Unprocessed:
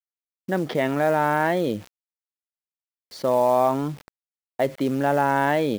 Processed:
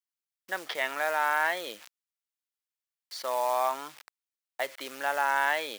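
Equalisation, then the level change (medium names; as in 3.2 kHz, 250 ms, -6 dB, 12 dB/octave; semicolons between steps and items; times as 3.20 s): high-pass 1.2 kHz 12 dB/octave; +1.0 dB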